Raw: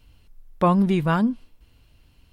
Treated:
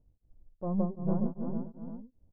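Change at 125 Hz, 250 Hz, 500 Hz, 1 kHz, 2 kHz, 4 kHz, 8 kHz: −10.5 dB, −10.0 dB, −11.5 dB, −19.5 dB, below −35 dB, below −40 dB, can't be measured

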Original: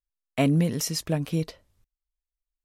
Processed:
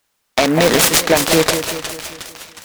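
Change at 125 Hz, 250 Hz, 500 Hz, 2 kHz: +1.0, +7.0, +16.5, +20.5 decibels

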